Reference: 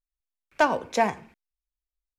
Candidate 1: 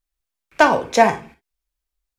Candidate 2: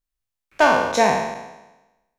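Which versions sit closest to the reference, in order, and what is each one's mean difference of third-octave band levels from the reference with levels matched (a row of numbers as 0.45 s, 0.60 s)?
1, 2; 1.5 dB, 8.0 dB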